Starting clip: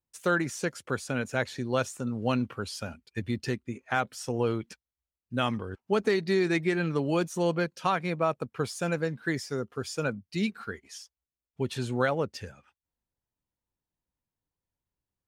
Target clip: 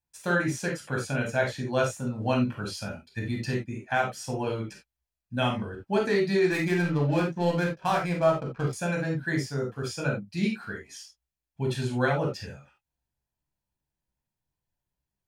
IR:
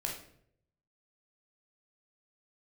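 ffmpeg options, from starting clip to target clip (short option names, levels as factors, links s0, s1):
-filter_complex "[0:a]asettb=1/sr,asplit=3[s0][s1][s2];[s0]atrim=end=6.494[s3];[s1]atrim=start=6.49:end=8.73,asetpts=PTS-STARTPTS,afade=t=in:d=0.004:c=qsin,afade=t=out:st=2.236:d=0.004:c=qsin,adynamicsmooth=sensitivity=8:basefreq=710[s4];[s2]atrim=start=8.726[s5];[s3][s4]acrossfade=d=0.004:c1=hsin:c2=qsin[s6];[s6][s5]acrossfade=d=0.004:c1=qsin:c2=hsin[s7];[1:a]atrim=start_sample=2205,afade=t=out:st=0.14:d=0.01,atrim=end_sample=6615[s8];[s7][s8]afir=irnorm=-1:irlink=0"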